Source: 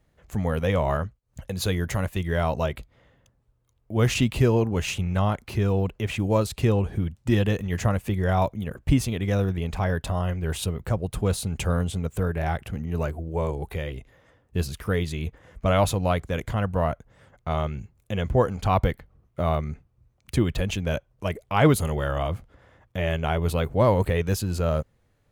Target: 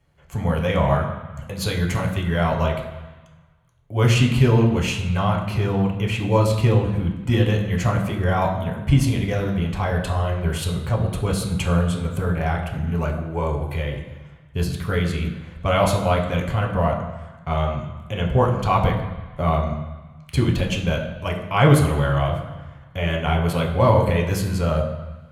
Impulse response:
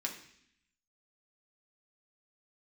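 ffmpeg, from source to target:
-filter_complex "[1:a]atrim=start_sample=2205,asetrate=26019,aresample=44100[link_01];[0:a][link_01]afir=irnorm=-1:irlink=0,volume=-1dB"

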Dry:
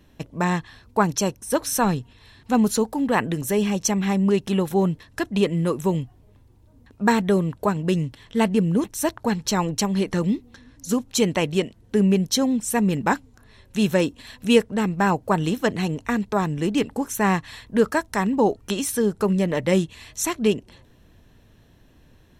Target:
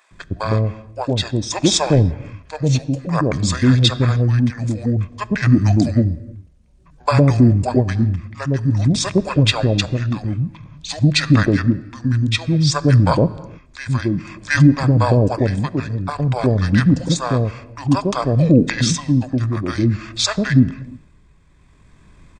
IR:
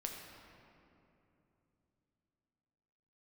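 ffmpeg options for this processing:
-filter_complex "[0:a]tremolo=f=0.54:d=0.61,asetrate=26990,aresample=44100,atempo=1.63392,acrossover=split=610[link_01][link_02];[link_01]adelay=110[link_03];[link_03][link_02]amix=inputs=2:normalize=0,asplit=2[link_04][link_05];[1:a]atrim=start_sample=2205,afade=type=out:start_time=0.39:duration=0.01,atrim=end_sample=17640[link_06];[link_05][link_06]afir=irnorm=-1:irlink=0,volume=-11dB[link_07];[link_04][link_07]amix=inputs=2:normalize=0,alimiter=level_in=8.5dB:limit=-1dB:release=50:level=0:latency=1,volume=-1dB"

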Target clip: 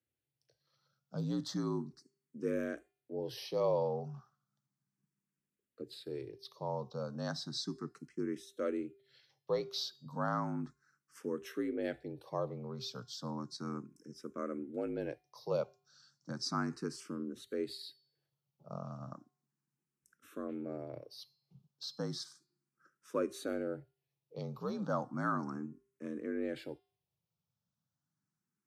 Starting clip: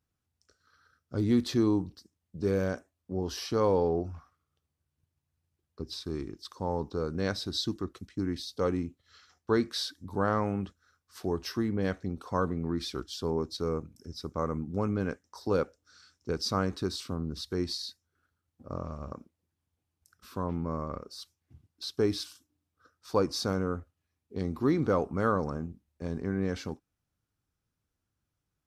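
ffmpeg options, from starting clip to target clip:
ffmpeg -i in.wav -filter_complex "[0:a]bandreject=frequency=339:width_type=h:width=4,bandreject=frequency=678:width_type=h:width=4,bandreject=frequency=1017:width_type=h:width=4,bandreject=frequency=1356:width_type=h:width=4,bandreject=frequency=1695:width_type=h:width=4,bandreject=frequency=2034:width_type=h:width=4,bandreject=frequency=2373:width_type=h:width=4,bandreject=frequency=2712:width_type=h:width=4,bandreject=frequency=3051:width_type=h:width=4,bandreject=frequency=3390:width_type=h:width=4,bandreject=frequency=3729:width_type=h:width=4,bandreject=frequency=4068:width_type=h:width=4,bandreject=frequency=4407:width_type=h:width=4,bandreject=frequency=4746:width_type=h:width=4,bandreject=frequency=5085:width_type=h:width=4,afreqshift=56,asplit=2[link_01][link_02];[link_02]afreqshift=0.34[link_03];[link_01][link_03]amix=inputs=2:normalize=1,volume=-4.5dB" out.wav

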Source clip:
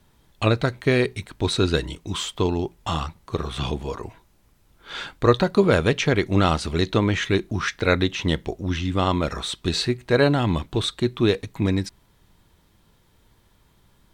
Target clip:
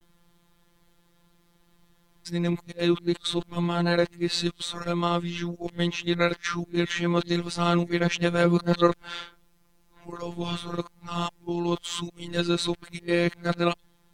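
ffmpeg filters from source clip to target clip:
ffmpeg -i in.wav -af "areverse,afftfilt=real='hypot(re,im)*cos(PI*b)':imag='0':win_size=1024:overlap=0.75" out.wav

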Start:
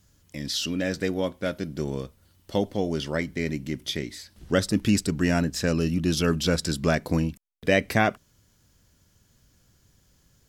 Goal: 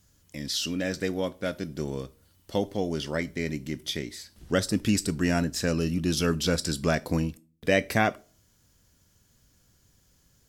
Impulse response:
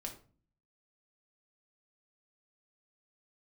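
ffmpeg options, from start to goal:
-filter_complex "[0:a]asplit=2[link_01][link_02];[link_02]bass=frequency=250:gain=-10,treble=frequency=4000:gain=11[link_03];[1:a]atrim=start_sample=2205,afade=type=out:start_time=0.4:duration=0.01,atrim=end_sample=18081[link_04];[link_03][link_04]afir=irnorm=-1:irlink=0,volume=-11.5dB[link_05];[link_01][link_05]amix=inputs=2:normalize=0,volume=-3dB"

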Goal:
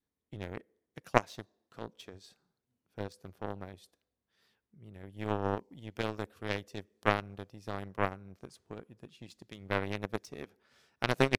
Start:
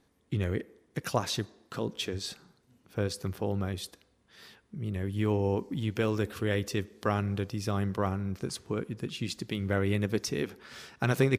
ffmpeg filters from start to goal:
ffmpeg -i in.wav -af "adynamicequalizer=threshold=0.00501:dfrequency=650:dqfactor=1.8:tfrequency=650:tqfactor=1.8:attack=5:release=100:ratio=0.375:range=3.5:mode=boostabove:tftype=bell,aeval=exprs='0.355*(cos(1*acos(clip(val(0)/0.355,-1,1)))-cos(1*PI/2))+0.112*(cos(3*acos(clip(val(0)/0.355,-1,1)))-cos(3*PI/2))':channel_layout=same,volume=5.5dB" out.wav

